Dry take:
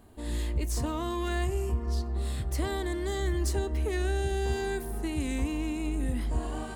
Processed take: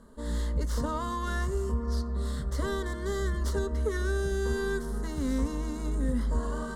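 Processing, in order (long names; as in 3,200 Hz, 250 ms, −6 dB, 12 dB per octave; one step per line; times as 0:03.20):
stylus tracing distortion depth 0.21 ms
low-pass filter 10,000 Hz 12 dB per octave
high-shelf EQ 6,500 Hz −5 dB
phaser with its sweep stopped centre 500 Hz, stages 8
level +5.5 dB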